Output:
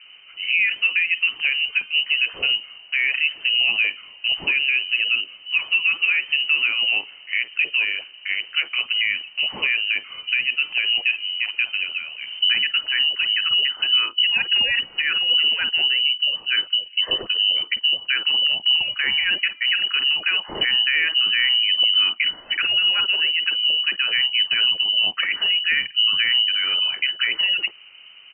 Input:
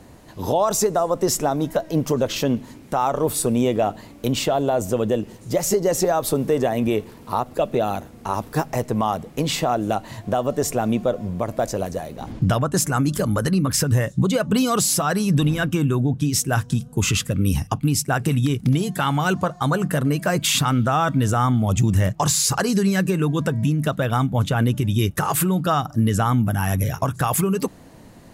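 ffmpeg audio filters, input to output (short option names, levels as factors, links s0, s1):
-filter_complex "[0:a]lowpass=f=2600:t=q:w=0.5098,lowpass=f=2600:t=q:w=0.6013,lowpass=f=2600:t=q:w=0.9,lowpass=f=2600:t=q:w=2.563,afreqshift=-3100,acrossover=split=1100[s0][s1];[s0]adelay=50[s2];[s2][s1]amix=inputs=2:normalize=0"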